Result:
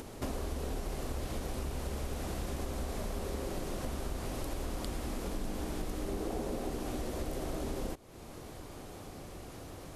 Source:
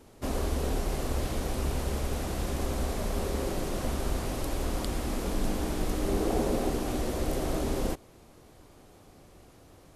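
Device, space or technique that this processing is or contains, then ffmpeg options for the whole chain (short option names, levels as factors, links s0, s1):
upward and downward compression: -af "acompressor=mode=upward:threshold=0.00447:ratio=2.5,acompressor=threshold=0.00794:ratio=4,volume=2"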